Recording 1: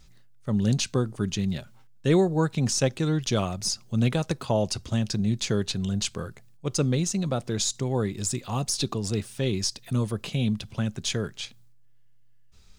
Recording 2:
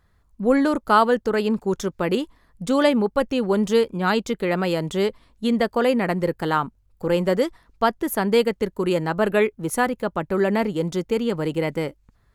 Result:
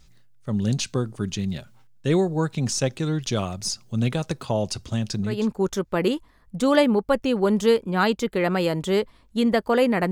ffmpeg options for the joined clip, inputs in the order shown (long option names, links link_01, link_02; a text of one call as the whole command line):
ffmpeg -i cue0.wav -i cue1.wav -filter_complex "[0:a]apad=whole_dur=10.11,atrim=end=10.11,atrim=end=5.48,asetpts=PTS-STARTPTS[link_01];[1:a]atrim=start=1.29:end=6.18,asetpts=PTS-STARTPTS[link_02];[link_01][link_02]acrossfade=duration=0.26:curve1=tri:curve2=tri" out.wav